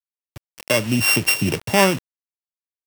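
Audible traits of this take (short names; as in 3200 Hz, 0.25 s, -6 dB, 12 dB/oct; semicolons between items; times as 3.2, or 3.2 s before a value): a buzz of ramps at a fixed pitch in blocks of 16 samples; tremolo triangle 5.6 Hz, depth 50%; a quantiser's noise floor 6-bit, dither none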